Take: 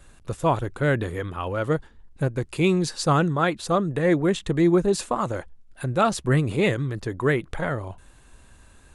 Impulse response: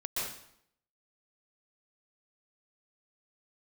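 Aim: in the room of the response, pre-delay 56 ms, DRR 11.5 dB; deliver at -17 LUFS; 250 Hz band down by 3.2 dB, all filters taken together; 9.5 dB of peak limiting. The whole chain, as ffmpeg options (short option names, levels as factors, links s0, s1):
-filter_complex "[0:a]equalizer=f=250:t=o:g=-5.5,alimiter=limit=0.126:level=0:latency=1,asplit=2[s0][s1];[1:a]atrim=start_sample=2205,adelay=56[s2];[s1][s2]afir=irnorm=-1:irlink=0,volume=0.158[s3];[s0][s3]amix=inputs=2:normalize=0,volume=3.76"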